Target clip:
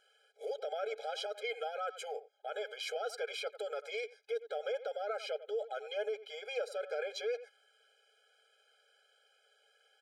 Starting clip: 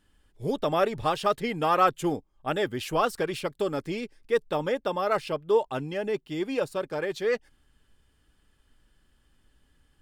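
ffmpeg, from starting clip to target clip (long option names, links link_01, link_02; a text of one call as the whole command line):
ffmpeg -i in.wav -filter_complex "[0:a]aemphasis=mode=production:type=50kf,asplit=2[link_01][link_02];[link_02]adelay=90,highpass=300,lowpass=3400,asoftclip=type=hard:threshold=-19dB,volume=-24dB[link_03];[link_01][link_03]amix=inputs=2:normalize=0,acompressor=threshold=-29dB:ratio=5,highpass=250,lowpass=4100,alimiter=level_in=8dB:limit=-24dB:level=0:latency=1:release=34,volume=-8dB,afftfilt=real='re*eq(mod(floor(b*sr/1024/420),2),1)':imag='im*eq(mod(floor(b*sr/1024/420),2),1)':win_size=1024:overlap=0.75,volume=5dB" out.wav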